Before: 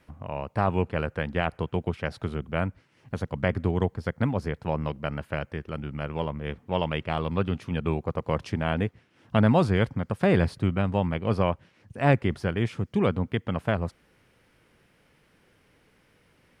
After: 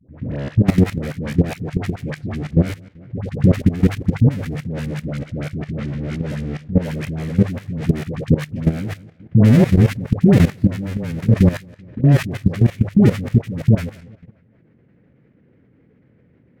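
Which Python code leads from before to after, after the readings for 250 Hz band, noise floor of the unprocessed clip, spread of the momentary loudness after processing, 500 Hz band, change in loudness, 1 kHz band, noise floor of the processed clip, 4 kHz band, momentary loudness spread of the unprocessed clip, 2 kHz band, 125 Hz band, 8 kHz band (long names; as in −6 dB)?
+11.0 dB, −64 dBFS, 13 LU, +2.5 dB, +9.5 dB, −5.0 dB, −55 dBFS, +2.0 dB, 11 LU, +1.0 dB, +11.5 dB, can't be measured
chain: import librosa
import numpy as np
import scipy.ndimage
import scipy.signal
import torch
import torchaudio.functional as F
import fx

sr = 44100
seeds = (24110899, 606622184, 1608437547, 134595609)

p1 = fx.halfwave_hold(x, sr)
p2 = fx.graphic_eq_10(p1, sr, hz=(125, 250, 500, 1000, 2000), db=(9, 9, 6, -6, 9))
p3 = p2 + fx.echo_feedback(p2, sr, ms=196, feedback_pct=43, wet_db=-18.0, dry=0)
p4 = fx.transient(p3, sr, attack_db=1, sustain_db=-6)
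p5 = fx.low_shelf(p4, sr, hz=380.0, db=7.5)
p6 = fx.env_lowpass(p5, sr, base_hz=1800.0, full_db=-4.0)
p7 = fx.rider(p6, sr, range_db=3, speed_s=2.0)
p8 = p6 + (p7 * librosa.db_to_amplitude(-1.5))
p9 = scipy.signal.sosfilt(scipy.signal.butter(2, 47.0, 'highpass', fs=sr, output='sos'), p8)
p10 = fx.hum_notches(p9, sr, base_hz=50, count=3)
p11 = fx.dispersion(p10, sr, late='highs', ms=100.0, hz=670.0)
p12 = fx.level_steps(p11, sr, step_db=15)
y = p12 * librosa.db_to_amplitude(-9.5)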